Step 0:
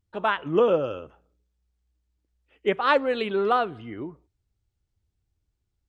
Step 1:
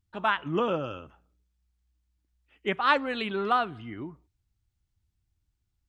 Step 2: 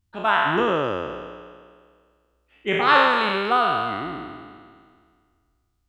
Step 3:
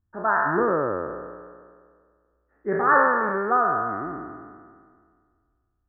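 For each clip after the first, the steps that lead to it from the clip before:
bell 480 Hz -10 dB 0.86 oct
spectral trails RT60 1.92 s; gain +2 dB
rippled Chebyshev low-pass 1800 Hz, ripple 3 dB

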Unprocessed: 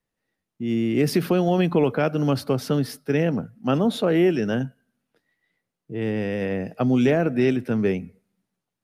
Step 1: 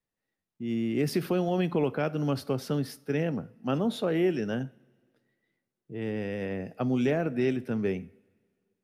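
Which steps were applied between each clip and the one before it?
two-slope reverb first 0.41 s, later 2.1 s, from -20 dB, DRR 16.5 dB; gain -7 dB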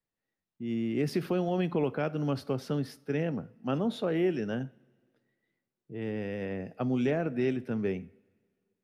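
high shelf 7500 Hz -9 dB; gain -2 dB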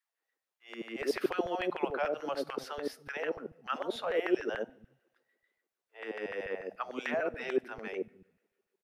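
LFO high-pass saw down 6.8 Hz 380–1800 Hz; three bands offset in time highs, mids, lows 80/280 ms, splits 160/580 Hz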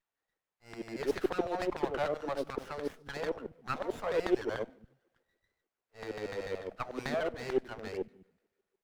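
running maximum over 9 samples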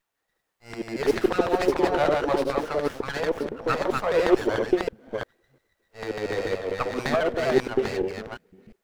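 reverse delay 0.349 s, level -2.5 dB; gain +9 dB

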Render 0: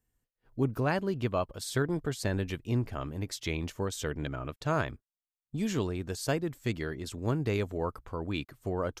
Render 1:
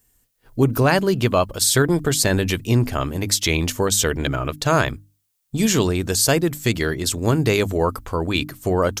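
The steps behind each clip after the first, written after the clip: high shelf 4200 Hz +12 dB; notches 50/100/150/200/250/300 Hz; in parallel at 0 dB: limiter -21.5 dBFS, peak gain reduction 7 dB; on the sum: gain +7 dB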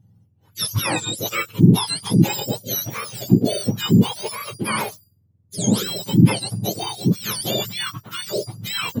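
spectrum mirrored in octaves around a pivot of 1200 Hz; gain -2 dB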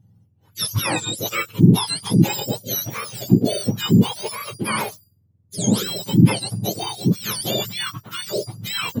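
nothing audible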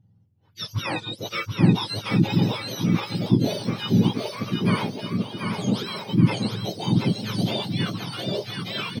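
polynomial smoothing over 15 samples; on a send: bouncing-ball echo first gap 0.73 s, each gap 0.65×, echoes 5; on the sum: gain -5 dB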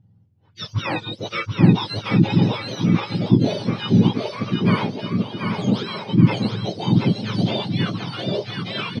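air absorption 120 m; gain +4 dB

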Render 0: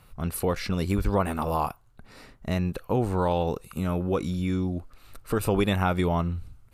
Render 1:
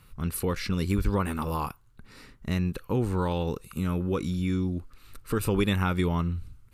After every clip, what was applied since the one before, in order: bell 680 Hz -12.5 dB 0.63 oct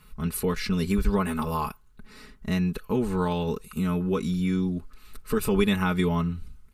comb 4.7 ms, depth 74%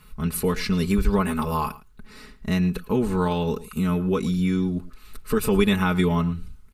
outdoor echo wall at 19 m, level -18 dB; gain +3 dB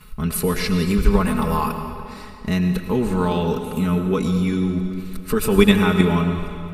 in parallel at +3 dB: level quantiser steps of 18 dB; on the sum: digital reverb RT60 2.4 s, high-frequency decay 0.85×, pre-delay 60 ms, DRR 6.5 dB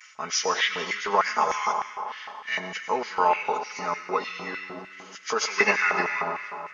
nonlinear frequency compression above 1500 Hz 1.5:1; vibrato 0.44 Hz 28 cents; LFO high-pass square 3.3 Hz 760–1900 Hz

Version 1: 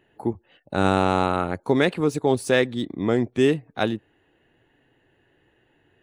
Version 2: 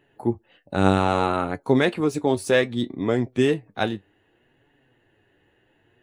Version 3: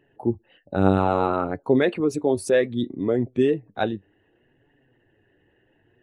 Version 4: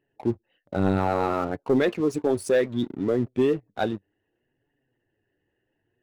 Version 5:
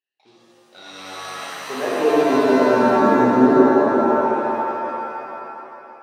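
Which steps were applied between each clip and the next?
flange 0.64 Hz, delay 6.8 ms, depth 4.1 ms, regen +57%; gain +4 dB
formant sharpening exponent 1.5
sample leveller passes 2; gain -8.5 dB
band-pass sweep 3900 Hz -> 260 Hz, 1.31–2.24; AGC gain up to 6 dB; shimmer reverb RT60 3 s, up +7 st, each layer -2 dB, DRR -8 dB; gain -3 dB

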